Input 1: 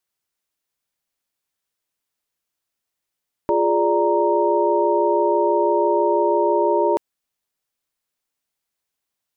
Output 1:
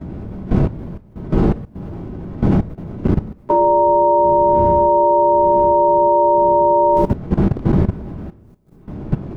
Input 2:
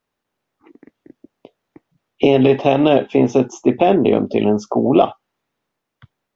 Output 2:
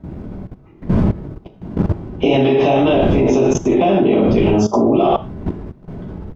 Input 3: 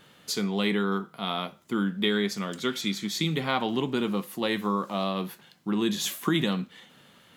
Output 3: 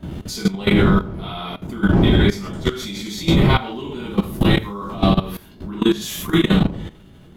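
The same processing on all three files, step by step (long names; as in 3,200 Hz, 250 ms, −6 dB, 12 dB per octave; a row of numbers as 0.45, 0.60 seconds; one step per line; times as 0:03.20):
wind on the microphone 200 Hz −27 dBFS
reverb whose tail is shaped and stops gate 190 ms falling, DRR −7.5 dB
output level in coarse steps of 16 dB
normalise the peak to −2 dBFS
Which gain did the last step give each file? +3.5, +3.0, +3.0 decibels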